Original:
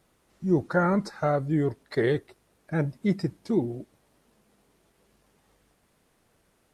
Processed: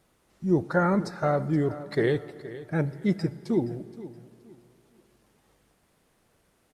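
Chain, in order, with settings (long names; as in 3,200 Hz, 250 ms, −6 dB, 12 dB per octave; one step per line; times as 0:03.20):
repeating echo 472 ms, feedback 27%, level −16 dB
on a send at −18 dB: convolution reverb RT60 2.9 s, pre-delay 53 ms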